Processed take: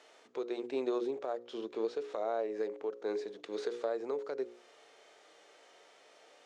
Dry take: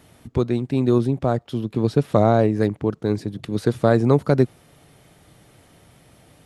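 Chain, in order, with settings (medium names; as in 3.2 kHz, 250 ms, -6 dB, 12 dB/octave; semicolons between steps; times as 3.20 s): Chebyshev band-pass 430–6800 Hz, order 3; hum notches 60/120/180/240/300/360/420/480/540 Hz; compression 16:1, threshold -28 dBFS, peak gain reduction 15 dB; harmonic-percussive split percussive -10 dB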